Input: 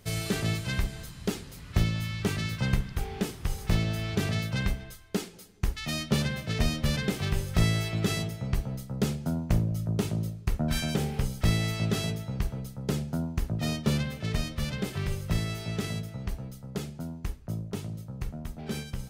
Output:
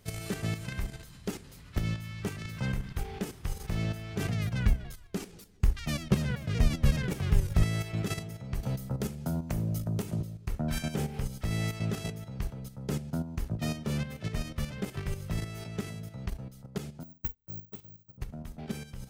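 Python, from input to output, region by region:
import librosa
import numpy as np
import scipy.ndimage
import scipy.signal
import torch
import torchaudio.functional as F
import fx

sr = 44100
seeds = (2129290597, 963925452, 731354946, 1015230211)

y = fx.chain(x, sr, fx.low_shelf(hz=120.0, db=9.5),
    fx.vibrato_shape(shape='saw_down', rate_hz=5.3, depth_cents=160.0), at=(4.28, 7.63))
y = fx.chain(y, sr, fx.high_shelf(hz=11000.0, db=9.0),
    fx.hum_notches(base_hz=50, count=10),
    fx.band_squash(depth_pct=70), at=(8.63, 10.21))
y = fx.chain(y, sr, fx.resample_bad(factor=2, down='none', up='zero_stuff'),
    fx.upward_expand(threshold_db=-43.0, expansion=2.5), at=(17.03, 18.18))
y = fx.dynamic_eq(y, sr, hz=3900.0, q=1.7, threshold_db=-49.0, ratio=4.0, max_db=-5)
y = fx.level_steps(y, sr, step_db=10)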